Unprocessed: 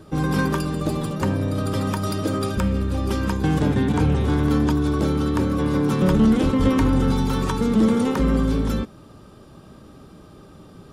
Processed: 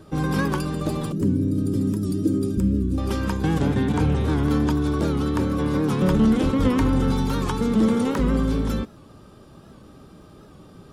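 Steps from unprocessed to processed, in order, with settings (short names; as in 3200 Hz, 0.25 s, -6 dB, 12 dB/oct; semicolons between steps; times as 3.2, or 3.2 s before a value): 1.12–2.98 EQ curve 100 Hz 0 dB, 340 Hz +7 dB, 680 Hz -21 dB, 3300 Hz -14 dB, 7700 Hz -4 dB; crackle 10/s -50 dBFS; record warp 78 rpm, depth 100 cents; gain -1.5 dB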